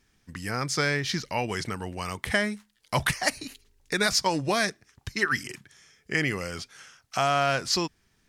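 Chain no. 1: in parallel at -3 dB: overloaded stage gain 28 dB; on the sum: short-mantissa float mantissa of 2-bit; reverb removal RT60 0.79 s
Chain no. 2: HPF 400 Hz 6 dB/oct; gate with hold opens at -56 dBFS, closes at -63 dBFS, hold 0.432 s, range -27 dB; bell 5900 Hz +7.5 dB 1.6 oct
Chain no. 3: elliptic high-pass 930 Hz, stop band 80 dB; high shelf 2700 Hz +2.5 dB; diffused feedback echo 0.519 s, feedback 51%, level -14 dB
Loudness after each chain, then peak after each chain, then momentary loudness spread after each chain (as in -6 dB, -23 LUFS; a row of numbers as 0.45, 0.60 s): -25.5, -25.0, -28.5 LUFS; -8.5, -4.5, -9.5 dBFS; 15, 16, 14 LU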